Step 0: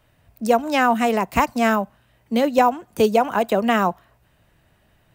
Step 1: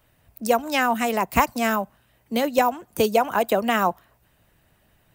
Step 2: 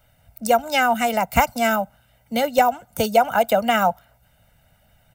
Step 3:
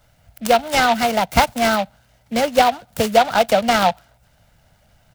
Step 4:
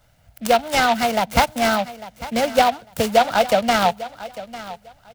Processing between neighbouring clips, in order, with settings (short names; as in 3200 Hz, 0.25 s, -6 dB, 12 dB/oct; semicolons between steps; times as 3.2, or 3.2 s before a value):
high shelf 9100 Hz +9.5 dB; harmonic-percussive split harmonic -5 dB
comb 1.4 ms, depth 84%
noise-modulated delay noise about 2300 Hz, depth 0.051 ms; gain +2.5 dB
feedback echo 0.849 s, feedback 20%, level -16 dB; gain -1.5 dB